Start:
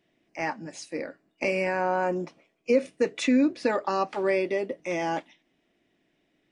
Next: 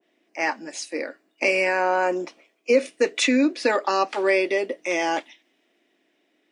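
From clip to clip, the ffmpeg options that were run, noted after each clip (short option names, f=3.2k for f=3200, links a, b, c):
-af "highpass=f=260:w=0.5412,highpass=f=260:w=1.3066,adynamicequalizer=threshold=0.00794:dfrequency=1600:dqfactor=0.7:tfrequency=1600:tqfactor=0.7:attack=5:release=100:ratio=0.375:range=3:mode=boostabove:tftype=highshelf,volume=4dB"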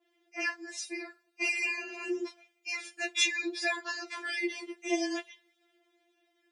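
-af "lowshelf=f=320:g=-9.5,afftfilt=real='re*4*eq(mod(b,16),0)':imag='im*4*eq(mod(b,16),0)':win_size=2048:overlap=0.75,volume=-1.5dB"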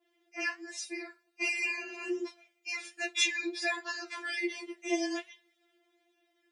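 -af "flanger=delay=4.7:depth=1.8:regen=-85:speed=1.3:shape=sinusoidal,volume=3.5dB"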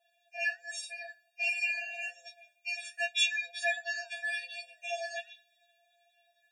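-filter_complex "[0:a]asplit=2[a][b];[b]acompressor=threshold=-41dB:ratio=6,volume=2dB[c];[a][c]amix=inputs=2:normalize=0,afftfilt=real='re*eq(mod(floor(b*sr/1024/480),2),1)':imag='im*eq(mod(floor(b*sr/1024/480),2),1)':win_size=1024:overlap=0.75"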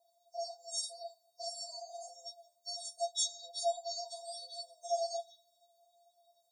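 -af "asuperstop=centerf=2200:order=20:qfactor=0.85,volume=4dB"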